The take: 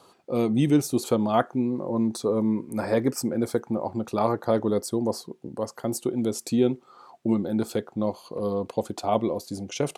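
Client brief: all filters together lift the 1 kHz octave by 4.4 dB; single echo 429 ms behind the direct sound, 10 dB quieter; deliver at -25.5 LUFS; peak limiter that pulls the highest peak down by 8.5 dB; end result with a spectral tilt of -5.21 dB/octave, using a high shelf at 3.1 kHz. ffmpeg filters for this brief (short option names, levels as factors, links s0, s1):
-af "equalizer=f=1000:t=o:g=5.5,highshelf=f=3100:g=5.5,alimiter=limit=0.2:level=0:latency=1,aecho=1:1:429:0.316,volume=1.06"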